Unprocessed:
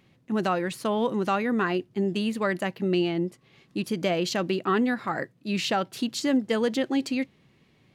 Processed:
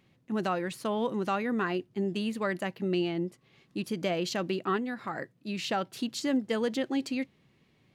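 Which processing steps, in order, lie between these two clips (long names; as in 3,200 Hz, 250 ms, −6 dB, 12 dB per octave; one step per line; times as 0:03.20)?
0:04.76–0:05.71: downward compressor, threshold −26 dBFS, peak gain reduction 6 dB
level −4.5 dB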